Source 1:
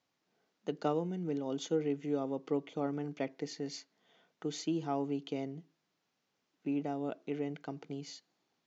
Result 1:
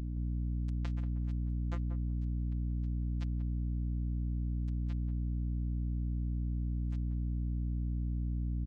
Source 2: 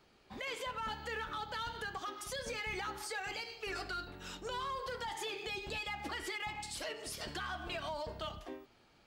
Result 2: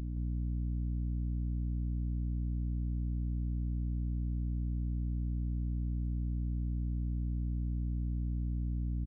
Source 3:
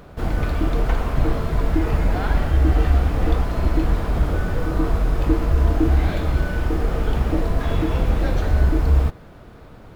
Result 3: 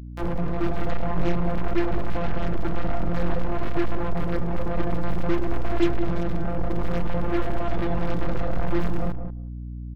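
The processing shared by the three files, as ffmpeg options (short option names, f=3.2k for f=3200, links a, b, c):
-filter_complex "[0:a]acrossover=split=2600[a][b];[b]acompressor=threshold=-52dB:ratio=4:attack=1:release=60[c];[a][c]amix=inputs=2:normalize=0,tiltshelf=f=1.3k:g=-3,acrossover=split=1000[d][e];[e]acompressor=threshold=-47dB:ratio=8[f];[d][f]amix=inputs=2:normalize=0,afftfilt=real='hypot(re,im)*cos(PI*b)':imag='0':win_size=1024:overlap=0.75,flanger=delay=20:depth=4.8:speed=0.53,acrusher=bits=4:mix=0:aa=0.5,aeval=exprs='val(0)+0.01*(sin(2*PI*60*n/s)+sin(2*PI*2*60*n/s)/2+sin(2*PI*3*60*n/s)/3+sin(2*PI*4*60*n/s)/4+sin(2*PI*5*60*n/s)/5)':c=same,asplit=2[g][h];[h]adelay=184,lowpass=f=810:p=1,volume=-7dB,asplit=2[i][j];[j]adelay=184,lowpass=f=810:p=1,volume=0.15,asplit=2[k][l];[l]adelay=184,lowpass=f=810:p=1,volume=0.15[m];[i][k][m]amix=inputs=3:normalize=0[n];[g][n]amix=inputs=2:normalize=0,volume=4.5dB"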